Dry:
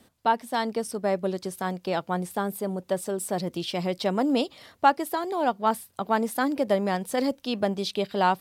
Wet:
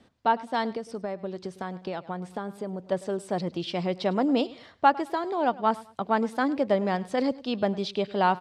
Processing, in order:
high-frequency loss of the air 110 metres
repeating echo 104 ms, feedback 29%, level −20 dB
0:00.75–0:02.92: downward compressor, threshold −30 dBFS, peak gain reduction 9 dB

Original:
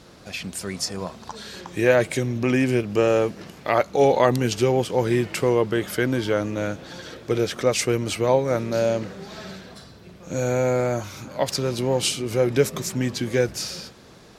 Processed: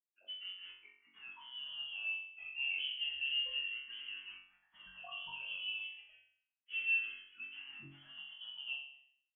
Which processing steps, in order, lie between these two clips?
noise reduction from a noise print of the clip's start 14 dB
low-pass that shuts in the quiet parts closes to 1,000 Hz, open at −19 dBFS
downward compressor 2.5 to 1, threshold −22 dBFS, peak gain reduction 7 dB
brickwall limiter −17 dBFS, peak gain reduction 7.5 dB
spectral peaks only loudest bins 4
dead-zone distortion −45 dBFS
voice inversion scrambler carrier 3,200 Hz
time stretch by phase vocoder 0.65×
flutter between parallel walls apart 3.7 metres, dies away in 0.61 s
frequency shifter mixed with the dry sound −0.3 Hz
level −7.5 dB

